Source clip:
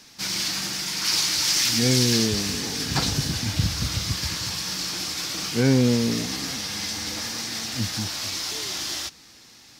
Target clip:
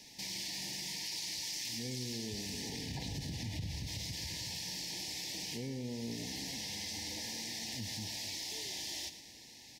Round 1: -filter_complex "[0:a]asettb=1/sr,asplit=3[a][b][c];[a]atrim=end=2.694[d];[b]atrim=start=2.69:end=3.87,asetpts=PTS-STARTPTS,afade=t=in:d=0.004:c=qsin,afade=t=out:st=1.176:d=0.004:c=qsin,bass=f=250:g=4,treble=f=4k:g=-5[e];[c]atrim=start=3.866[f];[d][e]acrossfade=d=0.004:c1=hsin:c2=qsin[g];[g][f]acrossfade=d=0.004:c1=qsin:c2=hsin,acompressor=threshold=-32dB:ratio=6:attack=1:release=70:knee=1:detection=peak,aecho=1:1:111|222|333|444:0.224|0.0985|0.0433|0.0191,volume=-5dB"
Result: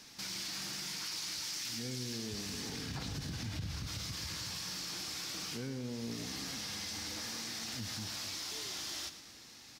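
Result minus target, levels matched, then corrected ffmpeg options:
1000 Hz band +3.5 dB
-filter_complex "[0:a]asettb=1/sr,asplit=3[a][b][c];[a]atrim=end=2.694[d];[b]atrim=start=2.69:end=3.87,asetpts=PTS-STARTPTS,afade=t=in:d=0.004:c=qsin,afade=t=out:st=1.176:d=0.004:c=qsin,bass=f=250:g=4,treble=f=4k:g=-5[e];[c]atrim=start=3.866[f];[d][e]acrossfade=d=0.004:c1=hsin:c2=qsin[g];[g][f]acrossfade=d=0.004:c1=qsin:c2=hsin,acompressor=threshold=-32dB:ratio=6:attack=1:release=70:knee=1:detection=peak,asuperstop=centerf=1300:order=20:qfactor=1.8,aecho=1:1:111|222|333|444:0.224|0.0985|0.0433|0.0191,volume=-5dB"

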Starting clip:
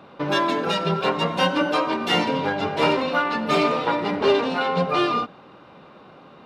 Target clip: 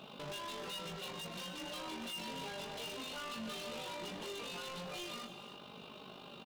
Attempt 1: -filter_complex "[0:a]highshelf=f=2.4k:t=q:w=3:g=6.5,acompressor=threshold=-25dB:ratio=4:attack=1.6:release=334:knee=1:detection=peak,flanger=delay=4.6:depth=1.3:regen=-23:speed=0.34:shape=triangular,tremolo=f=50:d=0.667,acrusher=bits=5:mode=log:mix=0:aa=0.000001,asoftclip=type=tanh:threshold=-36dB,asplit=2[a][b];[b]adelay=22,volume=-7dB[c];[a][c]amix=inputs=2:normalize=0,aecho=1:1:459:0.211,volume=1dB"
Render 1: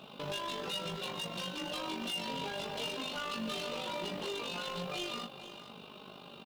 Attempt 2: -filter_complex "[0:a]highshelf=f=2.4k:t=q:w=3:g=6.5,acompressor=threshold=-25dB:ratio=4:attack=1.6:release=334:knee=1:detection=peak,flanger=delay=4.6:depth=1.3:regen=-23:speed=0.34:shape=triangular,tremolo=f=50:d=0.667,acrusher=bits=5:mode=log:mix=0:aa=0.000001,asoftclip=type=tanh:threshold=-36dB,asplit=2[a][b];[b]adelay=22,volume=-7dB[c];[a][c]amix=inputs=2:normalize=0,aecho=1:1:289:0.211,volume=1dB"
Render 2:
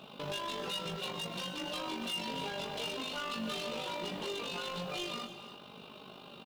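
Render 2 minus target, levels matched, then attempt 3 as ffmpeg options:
soft clip: distortion -4 dB
-filter_complex "[0:a]highshelf=f=2.4k:t=q:w=3:g=6.5,acompressor=threshold=-25dB:ratio=4:attack=1.6:release=334:knee=1:detection=peak,flanger=delay=4.6:depth=1.3:regen=-23:speed=0.34:shape=triangular,tremolo=f=50:d=0.667,acrusher=bits=5:mode=log:mix=0:aa=0.000001,asoftclip=type=tanh:threshold=-44dB,asplit=2[a][b];[b]adelay=22,volume=-7dB[c];[a][c]amix=inputs=2:normalize=0,aecho=1:1:289:0.211,volume=1dB"

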